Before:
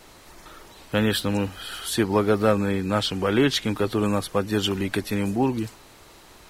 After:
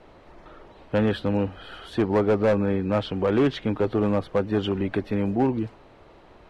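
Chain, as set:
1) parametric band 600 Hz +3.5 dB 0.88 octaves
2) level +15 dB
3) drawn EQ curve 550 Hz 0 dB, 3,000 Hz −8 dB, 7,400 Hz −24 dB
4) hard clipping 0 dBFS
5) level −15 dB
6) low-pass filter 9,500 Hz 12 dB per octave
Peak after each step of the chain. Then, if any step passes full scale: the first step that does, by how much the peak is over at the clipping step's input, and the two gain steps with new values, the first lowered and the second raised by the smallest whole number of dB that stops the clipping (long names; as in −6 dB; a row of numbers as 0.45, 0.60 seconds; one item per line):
−5.0, +10.0, +9.0, 0.0, −15.0, −15.0 dBFS
step 2, 9.0 dB
step 2 +6 dB, step 5 −6 dB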